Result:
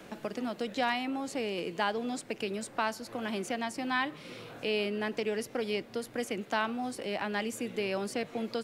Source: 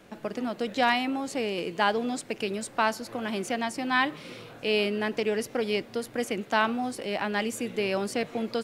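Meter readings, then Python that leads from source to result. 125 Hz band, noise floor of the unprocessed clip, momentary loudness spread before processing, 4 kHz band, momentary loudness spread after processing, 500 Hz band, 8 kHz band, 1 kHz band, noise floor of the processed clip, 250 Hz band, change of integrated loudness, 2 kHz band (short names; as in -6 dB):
-4.5 dB, -49 dBFS, 7 LU, -5.0 dB, 5 LU, -4.5 dB, -4.5 dB, -6.0 dB, -51 dBFS, -4.5 dB, -5.0 dB, -5.5 dB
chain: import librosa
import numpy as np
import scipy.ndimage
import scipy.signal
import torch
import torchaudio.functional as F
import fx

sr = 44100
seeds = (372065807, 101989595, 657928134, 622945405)

y = fx.band_squash(x, sr, depth_pct=40)
y = F.gain(torch.from_numpy(y), -5.0).numpy()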